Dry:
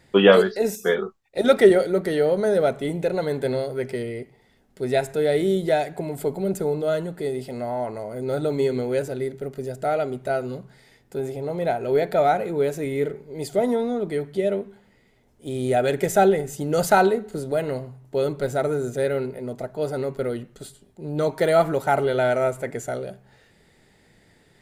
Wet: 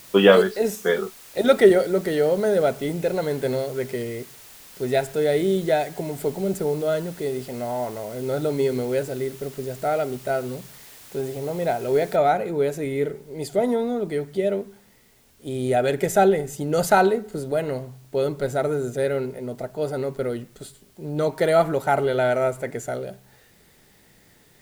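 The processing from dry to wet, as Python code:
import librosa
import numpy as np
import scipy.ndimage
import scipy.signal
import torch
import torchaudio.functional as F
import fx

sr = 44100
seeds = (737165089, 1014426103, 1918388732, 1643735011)

y = fx.noise_floor_step(x, sr, seeds[0], at_s=12.16, before_db=-46, after_db=-60, tilt_db=0.0)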